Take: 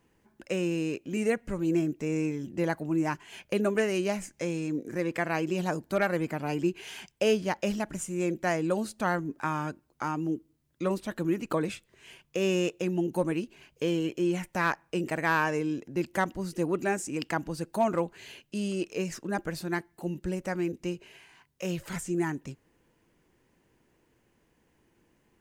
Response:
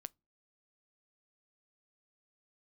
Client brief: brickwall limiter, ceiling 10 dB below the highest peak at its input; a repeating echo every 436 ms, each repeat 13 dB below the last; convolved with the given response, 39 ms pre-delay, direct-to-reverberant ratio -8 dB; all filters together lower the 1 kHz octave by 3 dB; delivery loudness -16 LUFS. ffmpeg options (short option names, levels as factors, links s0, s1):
-filter_complex "[0:a]equalizer=f=1000:t=o:g=-4,alimiter=level_in=1.12:limit=0.0631:level=0:latency=1,volume=0.891,aecho=1:1:436|872|1308:0.224|0.0493|0.0108,asplit=2[s0][s1];[1:a]atrim=start_sample=2205,adelay=39[s2];[s1][s2]afir=irnorm=-1:irlink=0,volume=4.47[s3];[s0][s3]amix=inputs=2:normalize=0,volume=3.55"